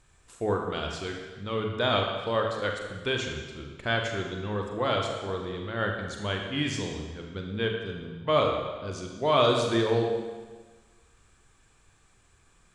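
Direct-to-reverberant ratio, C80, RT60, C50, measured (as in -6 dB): 1.5 dB, 5.0 dB, 1.4 s, 3.5 dB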